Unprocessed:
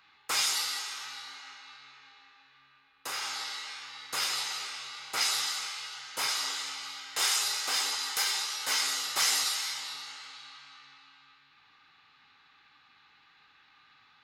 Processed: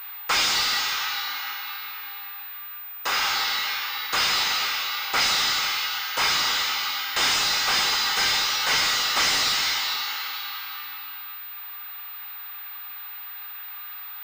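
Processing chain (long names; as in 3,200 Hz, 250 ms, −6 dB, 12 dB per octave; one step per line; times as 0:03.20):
mid-hump overdrive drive 20 dB, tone 4,300 Hz, clips at −13.5 dBFS
switching amplifier with a slow clock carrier 15,000 Hz
level +2.5 dB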